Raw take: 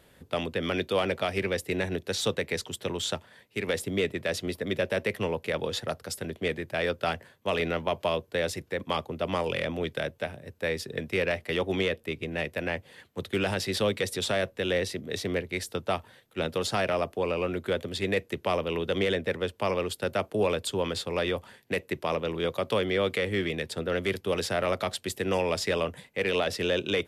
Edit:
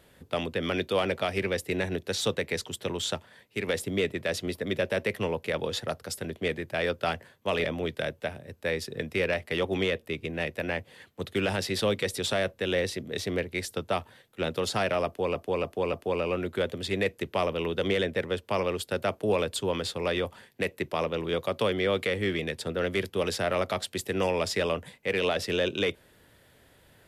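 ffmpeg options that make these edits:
ffmpeg -i in.wav -filter_complex "[0:a]asplit=5[link_01][link_02][link_03][link_04][link_05];[link_01]atrim=end=7.642[link_06];[link_02]atrim=start=9.618:end=17.332[link_07];[link_03]atrim=start=17.038:end=17.332[link_08];[link_04]atrim=start=17.038:end=17.332[link_09];[link_05]atrim=start=17.038[link_10];[link_06][link_07]acrossfade=duration=0.004:curve1=hsin:curve2=hsin[link_11];[link_11][link_08]acrossfade=duration=0.004:curve1=hsin:curve2=hsin[link_12];[link_12][link_09]acrossfade=duration=0.004:curve1=hsin:curve2=hsin[link_13];[link_13][link_10]acrossfade=duration=0.004:curve1=hsin:curve2=hsin" out.wav

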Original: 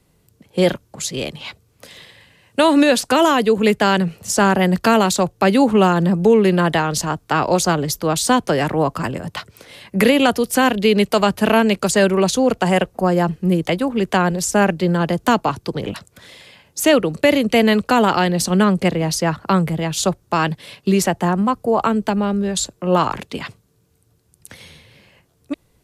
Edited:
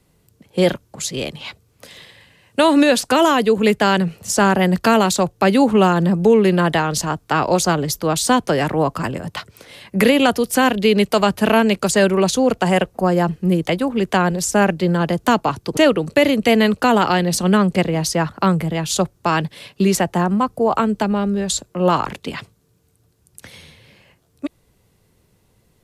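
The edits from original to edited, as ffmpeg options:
ffmpeg -i in.wav -filter_complex "[0:a]asplit=2[link_01][link_02];[link_01]atrim=end=15.772[link_03];[link_02]atrim=start=16.838[link_04];[link_03][link_04]acrossfade=duration=0.004:curve1=hsin:curve2=hsin" out.wav

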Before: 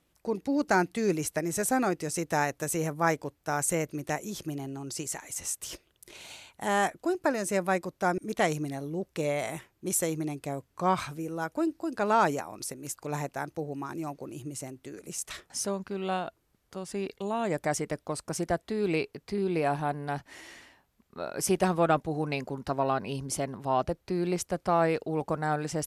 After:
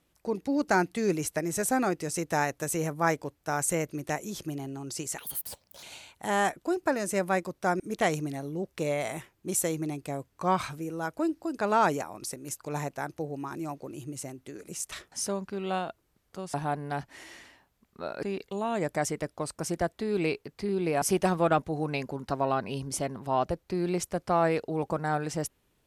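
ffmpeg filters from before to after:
ffmpeg -i in.wav -filter_complex "[0:a]asplit=6[link_01][link_02][link_03][link_04][link_05][link_06];[link_01]atrim=end=5.184[link_07];[link_02]atrim=start=5.18:end=6.21,asetpts=PTS-STARTPTS,asetrate=70119,aresample=44100[link_08];[link_03]atrim=start=6.206:end=16.922[link_09];[link_04]atrim=start=19.708:end=21.402[link_10];[link_05]atrim=start=16.918:end=19.712[link_11];[link_06]atrim=start=21.398[link_12];[link_07][link_08]acrossfade=duration=0.004:curve1=hsin:curve2=hsin[link_13];[link_13][link_09]acrossfade=duration=0.004:curve1=hsin:curve2=hsin[link_14];[link_14][link_10]acrossfade=duration=0.004:curve1=hsin:curve2=hsin[link_15];[link_15][link_11]acrossfade=duration=0.004:curve1=hsin:curve2=hsin[link_16];[link_16][link_12]acrossfade=duration=0.004:curve1=hsin:curve2=hsin" out.wav

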